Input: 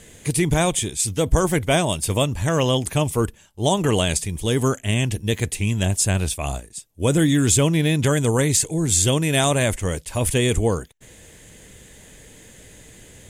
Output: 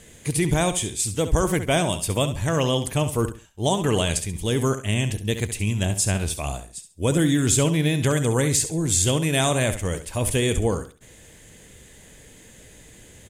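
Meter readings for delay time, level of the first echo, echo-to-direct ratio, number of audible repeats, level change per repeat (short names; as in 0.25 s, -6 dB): 68 ms, -11.0 dB, -10.5 dB, 3, -11.5 dB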